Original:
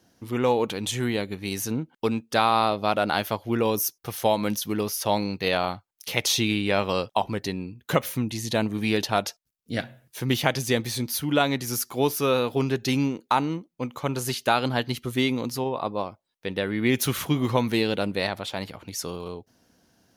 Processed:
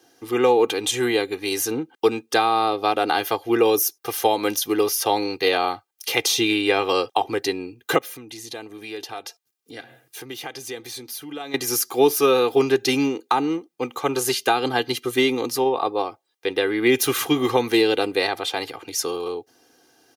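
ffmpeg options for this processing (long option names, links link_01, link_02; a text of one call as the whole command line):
ffmpeg -i in.wav -filter_complex "[0:a]asettb=1/sr,asplit=3[link_01][link_02][link_03];[link_01]atrim=end=7.984[link_04];[link_02]atrim=start=7.98:end=11.54,asetpts=PTS-STARTPTS,afade=type=in:duration=0.004:curve=qsin,afade=type=out:start_time=3.556:duration=0.004:curve=qsin,acompressor=threshold=-43dB:ratio=2.5:attack=3.2:release=140:knee=1:detection=peak[link_05];[link_03]atrim=start=11.536[link_06];[link_04][link_05]acrossfade=duration=0.004:curve1=hsin:curve2=qsin[link_07];[link_07][link_06]acrossfade=duration=0.004:curve1=qsin:curve2=hsin,highpass=240,aecho=1:1:2.5:0.78,acrossover=split=460[link_08][link_09];[link_09]acompressor=threshold=-23dB:ratio=5[link_10];[link_08][link_10]amix=inputs=2:normalize=0,volume=5dB" out.wav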